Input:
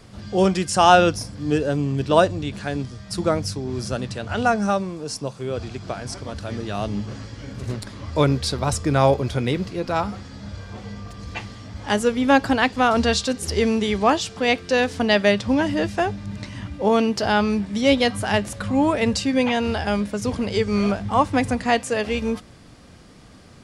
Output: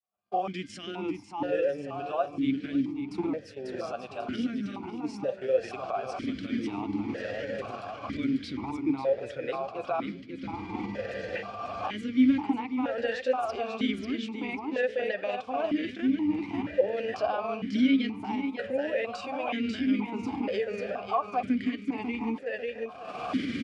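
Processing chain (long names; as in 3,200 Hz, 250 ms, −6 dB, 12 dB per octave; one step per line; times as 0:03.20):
camcorder AGC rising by 21 dB per second
noise gate −24 dBFS, range −37 dB
parametric band 1,400 Hz +4.5 dB 1.1 octaves
brickwall limiter −9 dBFS, peak gain reduction 11.5 dB
granular cloud, spray 16 ms, pitch spread up and down by 0 semitones
on a send: repeating echo 543 ms, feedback 38%, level −5 dB
on the sum: formant filter that steps through the vowels 2.1 Hz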